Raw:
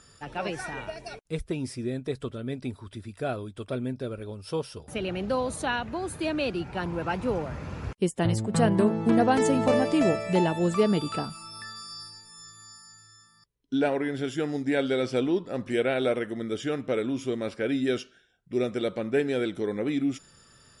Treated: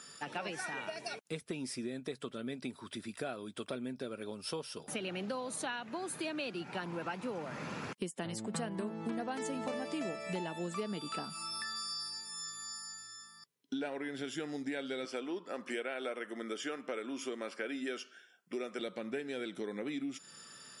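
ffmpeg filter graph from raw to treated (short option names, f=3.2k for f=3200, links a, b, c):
-filter_complex "[0:a]asettb=1/sr,asplit=3[a][b][c];[a]atrim=end=15.054[d];[b]atrim=start=15.05:end=18.79,asetpts=PTS-STARTPTS,afade=t=in:d=0.004:c=qsin,afade=t=out:st=3.736:d=0.004:c=qsin,highpass=280,equalizer=f=1.2k:t=o:w=0.71:g=4,bandreject=f=3.8k:w=7.2[e];[c]atrim=start=18.786[f];[d][e]acrossfade=d=0.004:c1=hsin:c2=qsin[g];[g][f]acrossfade=d=0.004:c1=qsin:c2=hsin,highpass=f=180:w=0.5412,highpass=f=180:w=1.3066,equalizer=f=400:w=0.46:g=-6,acompressor=threshold=-42dB:ratio=5,volume=5dB"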